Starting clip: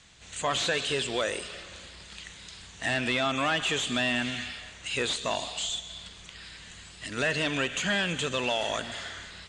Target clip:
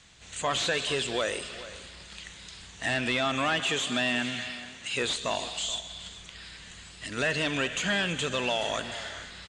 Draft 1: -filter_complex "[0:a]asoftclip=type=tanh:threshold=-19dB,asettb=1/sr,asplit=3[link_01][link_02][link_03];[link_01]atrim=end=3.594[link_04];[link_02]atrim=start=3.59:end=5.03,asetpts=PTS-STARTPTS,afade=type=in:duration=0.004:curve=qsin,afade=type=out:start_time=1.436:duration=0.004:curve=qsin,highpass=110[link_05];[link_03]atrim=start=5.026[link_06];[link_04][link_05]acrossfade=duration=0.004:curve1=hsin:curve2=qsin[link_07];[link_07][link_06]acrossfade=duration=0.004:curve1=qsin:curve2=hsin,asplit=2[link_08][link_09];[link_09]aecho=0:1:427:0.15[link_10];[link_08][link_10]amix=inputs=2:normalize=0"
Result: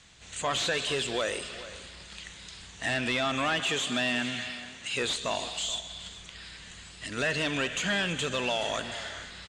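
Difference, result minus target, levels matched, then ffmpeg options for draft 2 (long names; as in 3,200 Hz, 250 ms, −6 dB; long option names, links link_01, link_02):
soft clipping: distortion +15 dB
-filter_complex "[0:a]asoftclip=type=tanh:threshold=-10.5dB,asettb=1/sr,asplit=3[link_01][link_02][link_03];[link_01]atrim=end=3.594[link_04];[link_02]atrim=start=3.59:end=5.03,asetpts=PTS-STARTPTS,afade=type=in:duration=0.004:curve=qsin,afade=type=out:start_time=1.436:duration=0.004:curve=qsin,highpass=110[link_05];[link_03]atrim=start=5.026[link_06];[link_04][link_05]acrossfade=duration=0.004:curve1=hsin:curve2=qsin[link_07];[link_07][link_06]acrossfade=duration=0.004:curve1=qsin:curve2=hsin,asplit=2[link_08][link_09];[link_09]aecho=0:1:427:0.15[link_10];[link_08][link_10]amix=inputs=2:normalize=0"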